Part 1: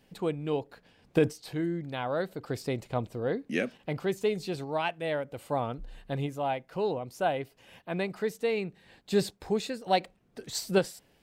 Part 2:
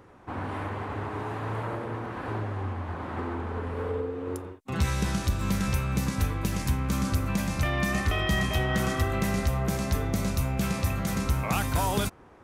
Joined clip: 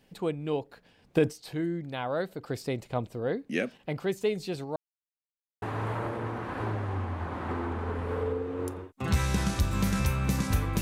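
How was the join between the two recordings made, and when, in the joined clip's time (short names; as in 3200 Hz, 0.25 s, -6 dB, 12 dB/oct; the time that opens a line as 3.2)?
part 1
4.76–5.62 mute
5.62 switch to part 2 from 1.3 s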